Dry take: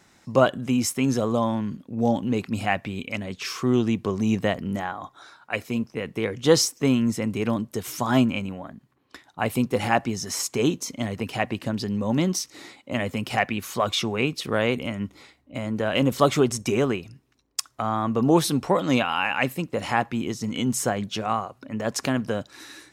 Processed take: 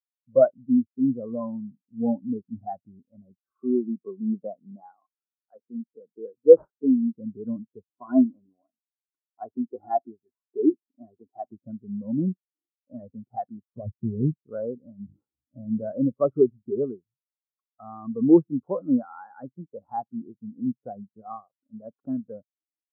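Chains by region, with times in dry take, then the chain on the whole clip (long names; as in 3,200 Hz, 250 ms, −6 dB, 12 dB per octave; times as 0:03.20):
0:03.44–0:07.16: phase distortion by the signal itself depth 0.16 ms + high-pass filter 190 Hz + linearly interpolated sample-rate reduction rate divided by 4×
0:07.97–0:11.52: high-pass filter 180 Hz 6 dB per octave + comb filter 2.9 ms, depth 44%
0:13.77–0:14.42: Gaussian smoothing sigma 11 samples + low-shelf EQ 240 Hz +11 dB + one half of a high-frequency compander decoder only
0:15.05–0:15.92: parametric band 130 Hz +4.5 dB 2.7 octaves + mains-hum notches 50/100/150/200/250/300/350/400/450/500 Hz + level that may fall only so fast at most 38 dB per second
whole clip: Chebyshev low-pass filter 1,500 Hz, order 4; leveller curve on the samples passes 1; every bin expanded away from the loudest bin 2.5 to 1; level +3 dB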